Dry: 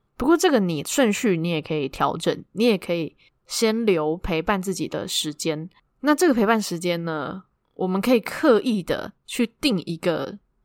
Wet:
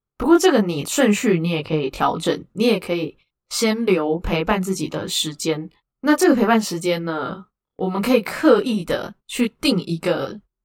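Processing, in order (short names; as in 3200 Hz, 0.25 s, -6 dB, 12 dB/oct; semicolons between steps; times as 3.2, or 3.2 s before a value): gate -44 dBFS, range -20 dB; chorus voices 2, 0.58 Hz, delay 21 ms, depth 2.9 ms; 7.84–8.5 short-mantissa float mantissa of 8-bit; gain +5.5 dB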